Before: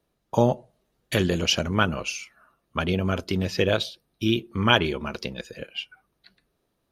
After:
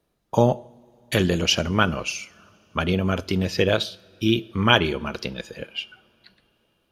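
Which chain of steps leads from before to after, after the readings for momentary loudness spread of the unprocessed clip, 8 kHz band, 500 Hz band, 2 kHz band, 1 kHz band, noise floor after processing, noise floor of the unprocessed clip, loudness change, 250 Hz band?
14 LU, +2.0 dB, +2.0 dB, +2.0 dB, +2.0 dB, -70 dBFS, -75 dBFS, +2.0 dB, +2.0 dB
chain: two-slope reverb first 0.56 s, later 4.3 s, from -19 dB, DRR 18 dB; gain +2 dB

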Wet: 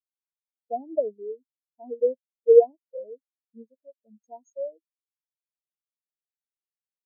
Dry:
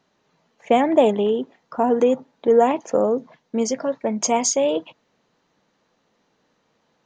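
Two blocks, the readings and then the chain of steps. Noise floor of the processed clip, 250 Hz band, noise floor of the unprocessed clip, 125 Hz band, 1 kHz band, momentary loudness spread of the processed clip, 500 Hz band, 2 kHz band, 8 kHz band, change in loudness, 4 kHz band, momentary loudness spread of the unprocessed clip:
under -85 dBFS, -24.0 dB, -68 dBFS, n/a, -15.5 dB, 23 LU, -4.5 dB, under -40 dB, under -40 dB, -3.0 dB, under -40 dB, 9 LU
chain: spectral expander 4:1

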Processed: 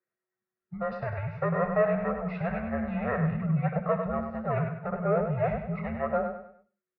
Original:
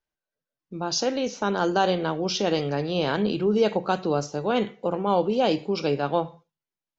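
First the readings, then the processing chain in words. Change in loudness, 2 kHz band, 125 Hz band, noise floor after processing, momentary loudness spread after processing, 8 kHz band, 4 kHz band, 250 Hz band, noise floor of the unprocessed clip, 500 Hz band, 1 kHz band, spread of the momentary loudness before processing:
-4.5 dB, -3.5 dB, +2.5 dB, under -85 dBFS, 7 LU, n/a, under -30 dB, -5.0 dB, under -85 dBFS, -5.0 dB, -6.0 dB, 5 LU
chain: band inversion scrambler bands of 500 Hz; treble ducked by the level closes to 2100 Hz, closed at -22 dBFS; in parallel at -6.5 dB: soft clip -25.5 dBFS, distortion -8 dB; on the sum: fixed phaser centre 670 Hz, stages 8; on a send: feedback echo 99 ms, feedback 37%, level -7 dB; on the sum: mistuned SSB -150 Hz 300–3100 Hz

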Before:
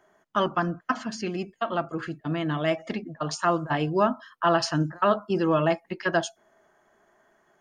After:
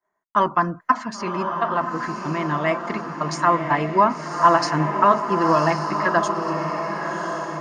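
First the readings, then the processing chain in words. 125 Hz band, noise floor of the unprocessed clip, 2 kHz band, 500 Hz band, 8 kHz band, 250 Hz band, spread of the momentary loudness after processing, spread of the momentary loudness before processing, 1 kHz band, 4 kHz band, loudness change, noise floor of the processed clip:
+3.0 dB, -67 dBFS, +6.0 dB, +3.5 dB, +2.5 dB, +3.0 dB, 9 LU, 9 LU, +9.5 dB, +0.5 dB, +5.5 dB, -68 dBFS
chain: expander -50 dBFS; thirty-one-band EQ 1000 Hz +12 dB, 2000 Hz +8 dB, 3150 Hz -8 dB; diffused feedback echo 1.063 s, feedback 51%, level -5.5 dB; gain +1.5 dB

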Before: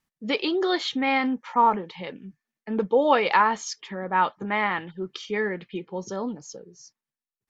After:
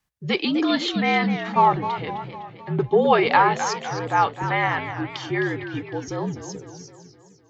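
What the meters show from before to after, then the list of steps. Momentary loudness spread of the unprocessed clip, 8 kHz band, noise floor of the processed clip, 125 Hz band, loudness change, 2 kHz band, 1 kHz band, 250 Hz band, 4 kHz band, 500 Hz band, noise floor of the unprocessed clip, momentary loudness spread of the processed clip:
16 LU, n/a, -53 dBFS, +12.5 dB, +2.5 dB, +3.0 dB, +3.0 dB, +3.5 dB, +3.0 dB, +2.5 dB, under -85 dBFS, 14 LU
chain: frequency shift -61 Hz; warbling echo 0.256 s, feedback 54%, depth 169 cents, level -10.5 dB; gain +2.5 dB

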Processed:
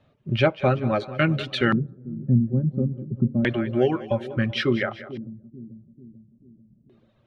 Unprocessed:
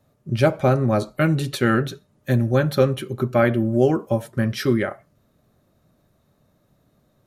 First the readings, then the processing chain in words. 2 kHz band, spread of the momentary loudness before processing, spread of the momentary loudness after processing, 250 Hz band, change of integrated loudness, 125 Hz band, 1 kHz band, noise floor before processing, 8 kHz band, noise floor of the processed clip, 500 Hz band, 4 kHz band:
-0.5 dB, 7 LU, 15 LU, -2.0 dB, -3.0 dB, -2.5 dB, -3.5 dB, -64 dBFS, under -10 dB, -62 dBFS, -4.5 dB, +1.5 dB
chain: reverb removal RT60 1.5 s; in parallel at -2 dB: compressor, threshold -26 dBFS, peak gain reduction 14 dB; on the sum: split-band echo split 460 Hz, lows 0.441 s, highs 0.191 s, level -14.5 dB; LFO low-pass square 0.29 Hz 210–3000 Hz; gain -4 dB

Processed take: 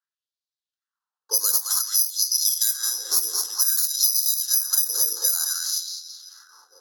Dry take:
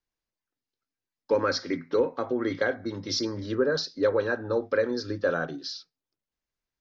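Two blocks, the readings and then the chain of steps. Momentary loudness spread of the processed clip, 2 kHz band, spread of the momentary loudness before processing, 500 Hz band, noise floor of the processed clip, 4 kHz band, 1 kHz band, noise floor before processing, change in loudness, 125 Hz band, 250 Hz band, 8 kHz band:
6 LU, -10.5 dB, 6 LU, -22.0 dB, under -85 dBFS, +10.5 dB, -7.5 dB, under -85 dBFS, +8.0 dB, under -40 dB, under -25 dB, n/a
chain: reverse delay 0.182 s, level -9 dB; Chebyshev high-pass 280 Hz, order 5; high shelf 2500 Hz +7.5 dB; on a send: split-band echo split 450 Hz, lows 0.494 s, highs 0.217 s, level -5 dB; on the sum: careless resampling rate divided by 8×, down none, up zero stuff; low-pass opened by the level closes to 1300 Hz, open at -10 dBFS; tilt +4.5 dB/oct; LFO high-pass sine 0.54 Hz 460–4200 Hz; compressor 6:1, threshold -3 dBFS, peak gain reduction 11 dB; fixed phaser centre 610 Hz, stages 6; mismatched tape noise reduction encoder only; gain -12 dB

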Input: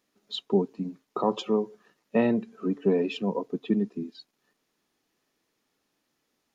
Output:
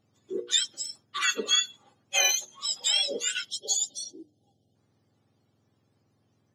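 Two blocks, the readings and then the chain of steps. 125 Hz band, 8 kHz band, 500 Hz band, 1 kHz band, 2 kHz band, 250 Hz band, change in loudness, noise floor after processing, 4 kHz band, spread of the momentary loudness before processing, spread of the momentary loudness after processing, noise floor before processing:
under -25 dB, n/a, -11.0 dB, -4.0 dB, +11.0 dB, -19.0 dB, +2.5 dB, -71 dBFS, +15.5 dB, 12 LU, 13 LU, -78 dBFS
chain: spectrum mirrored in octaves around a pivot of 1200 Hz; spectral gain 3.49–4.76, 830–2800 Hz -25 dB; low shelf 430 Hz -4 dB; notches 60/120/180/240/300/360/420/480 Hz; gain +4.5 dB

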